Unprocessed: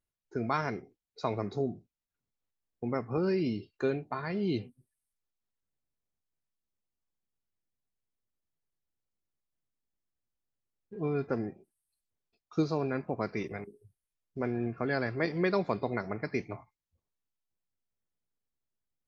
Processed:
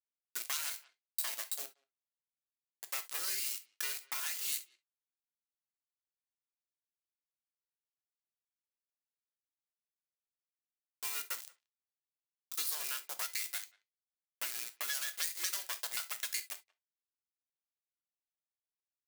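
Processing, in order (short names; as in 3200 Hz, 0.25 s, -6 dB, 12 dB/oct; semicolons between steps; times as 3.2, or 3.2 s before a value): tracing distortion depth 0.43 ms; HPF 1400 Hz 12 dB/oct; requantised 8-bit, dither none; speakerphone echo 0.18 s, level -29 dB; soft clip -31 dBFS, distortion -11 dB; tilt +3.5 dB/oct; non-linear reverb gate 90 ms falling, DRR 8 dB; compressor 6:1, threshold -39 dBFS, peak gain reduction 11.5 dB; high shelf 3800 Hz +9 dB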